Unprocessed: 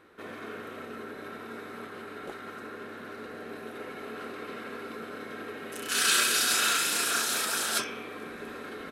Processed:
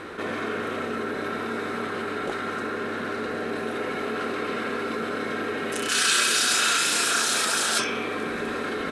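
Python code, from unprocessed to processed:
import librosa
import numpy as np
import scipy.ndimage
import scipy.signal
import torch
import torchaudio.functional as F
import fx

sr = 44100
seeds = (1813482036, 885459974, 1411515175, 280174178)

y = scipy.signal.sosfilt(scipy.signal.butter(4, 10000.0, 'lowpass', fs=sr, output='sos'), x)
y = fx.env_flatten(y, sr, amount_pct=50)
y = y * 10.0 ** (2.5 / 20.0)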